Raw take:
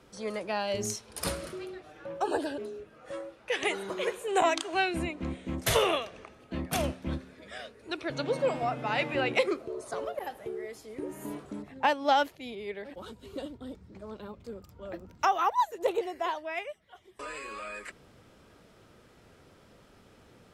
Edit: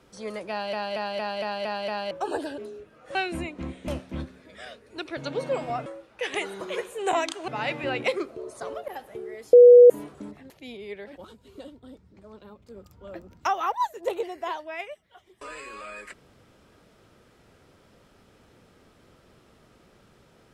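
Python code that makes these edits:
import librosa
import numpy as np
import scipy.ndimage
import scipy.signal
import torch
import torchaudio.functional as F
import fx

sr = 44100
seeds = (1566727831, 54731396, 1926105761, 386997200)

y = fx.edit(x, sr, fx.stutter_over(start_s=0.5, slice_s=0.23, count=7),
    fx.move(start_s=3.15, length_s=1.62, to_s=8.79),
    fx.cut(start_s=5.5, length_s=1.31),
    fx.bleep(start_s=10.84, length_s=0.37, hz=487.0, db=-7.0),
    fx.cut(start_s=11.81, length_s=0.47),
    fx.clip_gain(start_s=13.03, length_s=1.51, db=-4.5), tone=tone)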